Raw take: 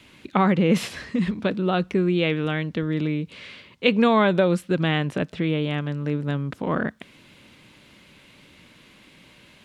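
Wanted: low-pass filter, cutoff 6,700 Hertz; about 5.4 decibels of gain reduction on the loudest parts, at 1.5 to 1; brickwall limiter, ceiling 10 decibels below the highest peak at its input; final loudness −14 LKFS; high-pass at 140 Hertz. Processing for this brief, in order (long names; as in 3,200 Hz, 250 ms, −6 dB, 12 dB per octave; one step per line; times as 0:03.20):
high-pass filter 140 Hz
low-pass filter 6,700 Hz
downward compressor 1.5 to 1, threshold −29 dBFS
level +16 dB
brickwall limiter −2 dBFS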